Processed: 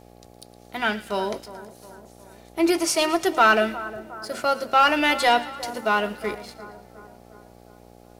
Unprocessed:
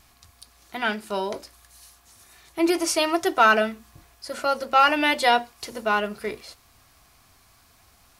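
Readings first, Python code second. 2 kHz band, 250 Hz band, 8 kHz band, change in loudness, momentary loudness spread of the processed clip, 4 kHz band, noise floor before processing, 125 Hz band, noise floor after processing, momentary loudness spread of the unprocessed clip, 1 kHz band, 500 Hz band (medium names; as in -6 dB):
+0.5 dB, +1.0 dB, +1.5 dB, +0.5 dB, 19 LU, +1.0 dB, -58 dBFS, no reading, -50 dBFS, 19 LU, +0.5 dB, +1.0 dB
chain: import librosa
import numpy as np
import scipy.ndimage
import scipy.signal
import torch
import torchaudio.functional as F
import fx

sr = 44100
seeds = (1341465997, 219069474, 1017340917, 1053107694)

y = fx.leveller(x, sr, passes=1)
y = fx.echo_split(y, sr, split_hz=1600.0, low_ms=360, high_ms=113, feedback_pct=52, wet_db=-15.5)
y = fx.dmg_buzz(y, sr, base_hz=60.0, harmonics=14, level_db=-47.0, tilt_db=-1, odd_only=False)
y = y * 10.0 ** (-2.5 / 20.0)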